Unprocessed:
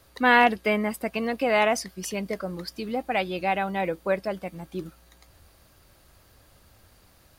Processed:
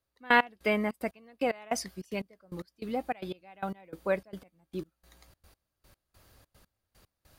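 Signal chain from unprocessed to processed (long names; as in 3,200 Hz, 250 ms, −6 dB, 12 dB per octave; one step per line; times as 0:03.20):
gate pattern "...x..xxx.x" 149 BPM −24 dB
level −3.5 dB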